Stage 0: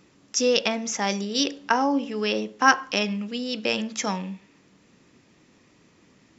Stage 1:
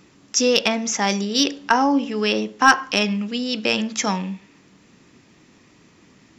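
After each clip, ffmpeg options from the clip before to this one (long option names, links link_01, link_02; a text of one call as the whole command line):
ffmpeg -i in.wav -af "equalizer=frequency=530:width_type=o:width=0.47:gain=-3.5,acontrast=36" out.wav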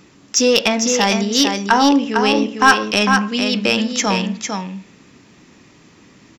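ffmpeg -i in.wav -af "aecho=1:1:452:0.501,acontrast=34,volume=-1dB" out.wav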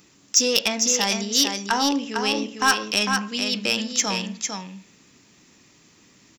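ffmpeg -i in.wav -af "crystalizer=i=3:c=0,volume=-10dB" out.wav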